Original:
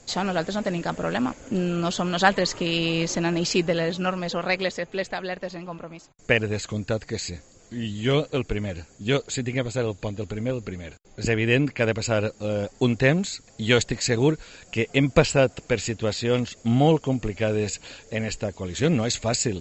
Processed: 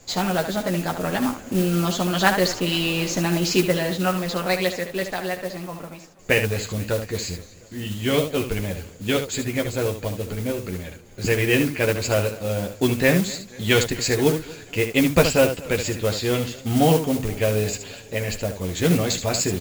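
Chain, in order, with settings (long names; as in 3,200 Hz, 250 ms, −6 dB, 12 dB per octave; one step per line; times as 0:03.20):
ambience of single reflections 11 ms −4 dB, 75 ms −8 dB
noise that follows the level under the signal 15 dB
feedback echo with a swinging delay time 241 ms, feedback 54%, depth 123 cents, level −21 dB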